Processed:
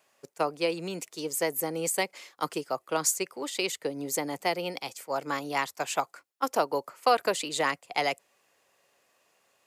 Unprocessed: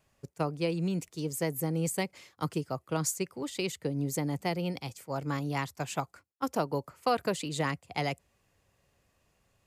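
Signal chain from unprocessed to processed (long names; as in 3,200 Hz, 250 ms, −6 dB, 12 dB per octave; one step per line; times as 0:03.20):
high-pass filter 440 Hz 12 dB per octave
level +6 dB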